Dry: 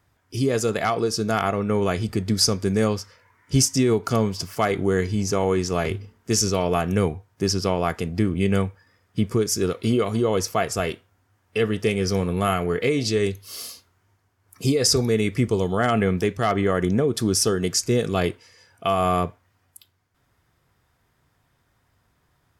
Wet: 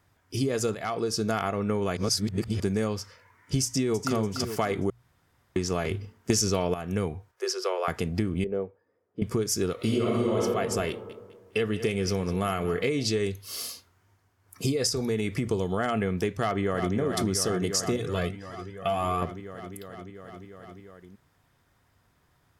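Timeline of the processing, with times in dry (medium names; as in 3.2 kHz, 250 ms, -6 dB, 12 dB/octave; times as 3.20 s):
0.75–1.34 s: fade in, from -13 dB
1.97–2.60 s: reverse
3.65–4.15 s: echo throw 290 ms, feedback 40%, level -7.5 dB
4.90–5.56 s: room tone
6.30–6.74 s: gain +12 dB
7.31–7.88 s: rippled Chebyshev high-pass 360 Hz, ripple 6 dB
8.44–9.22 s: band-pass filter 450 Hz, Q 2.4
9.75–10.39 s: reverb throw, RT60 1.4 s, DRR -6 dB
10.89–12.84 s: feedback delay 205 ms, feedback 32%, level -16 dB
14.89–15.47 s: compression 3:1, threshold -21 dBFS
16.36–16.95 s: echo throw 350 ms, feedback 80%, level -6.5 dB
17.96–19.22 s: Shepard-style flanger rising 1.8 Hz
whole clip: hum notches 60/120 Hz; compression, threshold -23 dBFS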